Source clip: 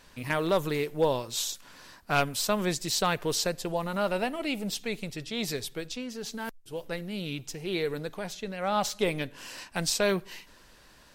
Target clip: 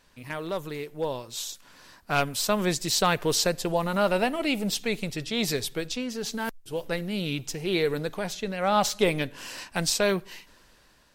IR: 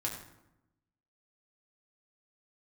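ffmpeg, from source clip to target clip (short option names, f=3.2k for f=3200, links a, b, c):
-af "dynaudnorm=f=890:g=5:m=11.5dB,volume=-6dB"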